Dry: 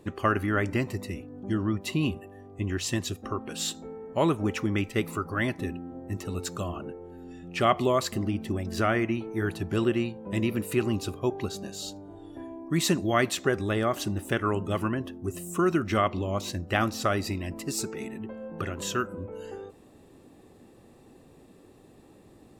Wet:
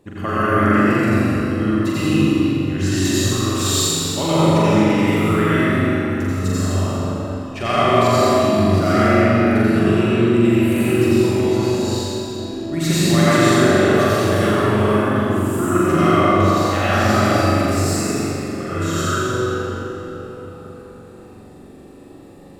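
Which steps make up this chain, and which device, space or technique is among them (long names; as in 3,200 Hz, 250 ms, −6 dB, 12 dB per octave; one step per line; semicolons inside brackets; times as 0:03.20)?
0:02.97–0:04.31: high-shelf EQ 3,600 Hz +9.5 dB
tunnel (flutter between parallel walls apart 7.3 metres, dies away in 0.89 s; convolution reverb RT60 4.1 s, pre-delay 78 ms, DRR −10 dB)
level −2.5 dB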